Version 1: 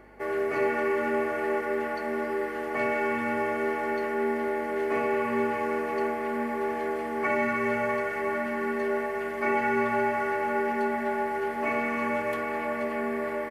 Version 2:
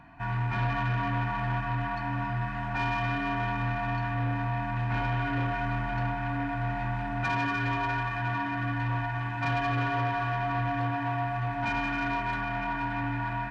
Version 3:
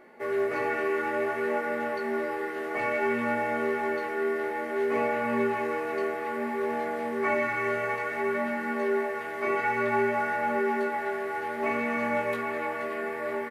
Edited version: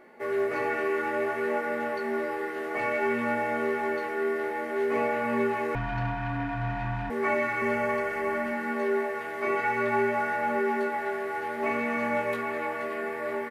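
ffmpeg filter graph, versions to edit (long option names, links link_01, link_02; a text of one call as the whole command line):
ffmpeg -i take0.wav -i take1.wav -i take2.wav -filter_complex "[2:a]asplit=3[link_01][link_02][link_03];[link_01]atrim=end=5.752[link_04];[1:a]atrim=start=5.748:end=7.102[link_05];[link_02]atrim=start=7.098:end=7.622[link_06];[0:a]atrim=start=7.618:end=8.522[link_07];[link_03]atrim=start=8.518[link_08];[link_04][link_05]acrossfade=duration=0.004:curve1=hsin:curve2=hsin[link_09];[link_09][link_06]acrossfade=duration=0.004:curve1=hsin:curve2=hsin[link_10];[link_10][link_07]acrossfade=duration=0.004:curve1=hsin:curve2=hsin[link_11];[link_11][link_08]acrossfade=duration=0.004:curve1=hsin:curve2=hsin" out.wav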